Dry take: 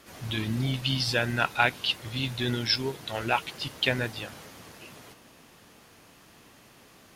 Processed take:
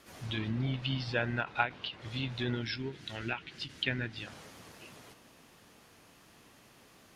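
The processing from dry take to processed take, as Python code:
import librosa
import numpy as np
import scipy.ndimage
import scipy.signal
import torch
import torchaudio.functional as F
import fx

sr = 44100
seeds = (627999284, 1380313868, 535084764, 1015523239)

y = fx.env_lowpass_down(x, sr, base_hz=2700.0, full_db=-25.0)
y = fx.band_shelf(y, sr, hz=730.0, db=-9.0, octaves=1.7, at=(2.62, 4.27))
y = fx.end_taper(y, sr, db_per_s=220.0)
y = F.gain(torch.from_numpy(y), -4.5).numpy()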